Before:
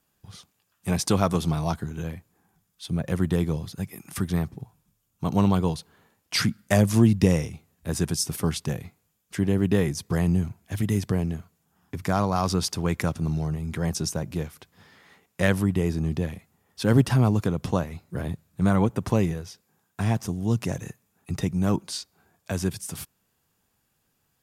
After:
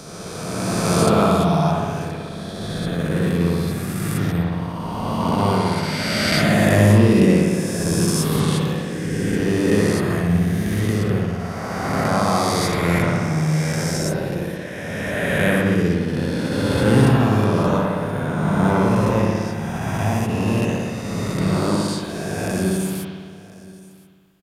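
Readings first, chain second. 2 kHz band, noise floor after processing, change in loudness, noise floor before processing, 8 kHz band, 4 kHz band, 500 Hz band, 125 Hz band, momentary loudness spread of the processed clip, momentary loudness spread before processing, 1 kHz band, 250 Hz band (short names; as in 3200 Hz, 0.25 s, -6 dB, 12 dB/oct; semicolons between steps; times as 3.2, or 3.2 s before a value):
+10.5 dB, -37 dBFS, +6.0 dB, -73 dBFS, +5.0 dB, +7.0 dB, +8.5 dB, +5.5 dB, 11 LU, 14 LU, +9.5 dB, +6.5 dB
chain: spectral swells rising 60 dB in 2.82 s; bell 76 Hz -13.5 dB 0.24 oct; on a send: echo 1.023 s -21.5 dB; on the sum: spring tank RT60 1.6 s, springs 58 ms, chirp 75 ms, DRR -2.5 dB; dynamic EQ 5700 Hz, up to -5 dB, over -40 dBFS, Q 3.1; attack slew limiter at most 100 dB/s; gain -1.5 dB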